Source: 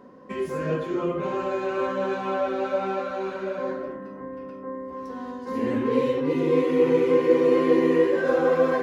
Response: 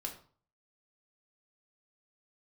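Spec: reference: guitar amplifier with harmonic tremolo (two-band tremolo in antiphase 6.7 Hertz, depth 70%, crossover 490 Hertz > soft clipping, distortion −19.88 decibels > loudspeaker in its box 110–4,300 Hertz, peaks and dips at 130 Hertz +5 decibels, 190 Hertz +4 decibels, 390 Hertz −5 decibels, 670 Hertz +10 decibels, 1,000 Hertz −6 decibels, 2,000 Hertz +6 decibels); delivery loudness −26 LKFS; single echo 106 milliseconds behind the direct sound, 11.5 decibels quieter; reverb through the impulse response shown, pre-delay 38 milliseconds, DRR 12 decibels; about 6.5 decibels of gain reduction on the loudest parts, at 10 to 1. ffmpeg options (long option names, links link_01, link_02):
-filter_complex "[0:a]acompressor=threshold=-21dB:ratio=10,aecho=1:1:106:0.266,asplit=2[link_01][link_02];[1:a]atrim=start_sample=2205,adelay=38[link_03];[link_02][link_03]afir=irnorm=-1:irlink=0,volume=-11.5dB[link_04];[link_01][link_04]amix=inputs=2:normalize=0,acrossover=split=490[link_05][link_06];[link_05]aeval=exprs='val(0)*(1-0.7/2+0.7/2*cos(2*PI*6.7*n/s))':channel_layout=same[link_07];[link_06]aeval=exprs='val(0)*(1-0.7/2-0.7/2*cos(2*PI*6.7*n/s))':channel_layout=same[link_08];[link_07][link_08]amix=inputs=2:normalize=0,asoftclip=threshold=-21.5dB,highpass=110,equalizer=frequency=130:width_type=q:width=4:gain=5,equalizer=frequency=190:width_type=q:width=4:gain=4,equalizer=frequency=390:width_type=q:width=4:gain=-5,equalizer=frequency=670:width_type=q:width=4:gain=10,equalizer=frequency=1000:width_type=q:width=4:gain=-6,equalizer=frequency=2000:width_type=q:width=4:gain=6,lowpass=frequency=4300:width=0.5412,lowpass=frequency=4300:width=1.3066,volume=5.5dB"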